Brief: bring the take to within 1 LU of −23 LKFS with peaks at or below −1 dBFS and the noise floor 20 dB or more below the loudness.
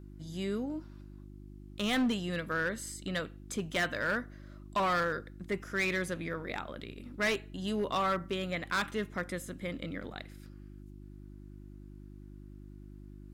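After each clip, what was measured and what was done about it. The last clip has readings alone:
share of clipped samples 1.2%; peaks flattened at −25.0 dBFS; mains hum 50 Hz; hum harmonics up to 350 Hz; level of the hum −47 dBFS; integrated loudness −34.0 LKFS; sample peak −25.0 dBFS; target loudness −23.0 LKFS
→ clipped peaks rebuilt −25 dBFS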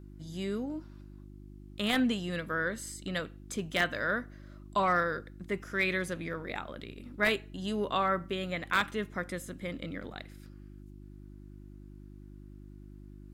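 share of clipped samples 0.0%; mains hum 50 Hz; hum harmonics up to 350 Hz; level of the hum −47 dBFS
→ hum removal 50 Hz, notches 7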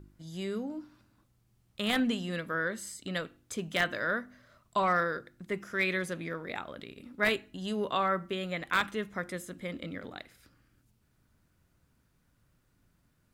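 mains hum none found; integrated loudness −33.0 LKFS; sample peak −15.5 dBFS; target loudness −23.0 LKFS
→ level +10 dB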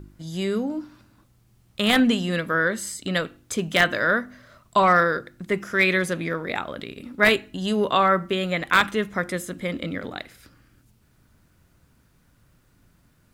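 integrated loudness −23.0 LKFS; sample peak −5.5 dBFS; background noise floor −61 dBFS

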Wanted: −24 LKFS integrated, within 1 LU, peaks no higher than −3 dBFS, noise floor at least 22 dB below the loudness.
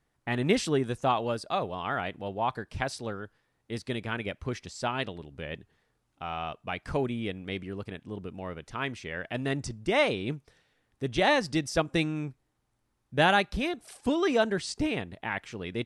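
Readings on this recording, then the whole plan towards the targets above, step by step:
integrated loudness −30.5 LKFS; sample peak −10.0 dBFS; target loudness −24.0 LKFS
→ level +6.5 dB

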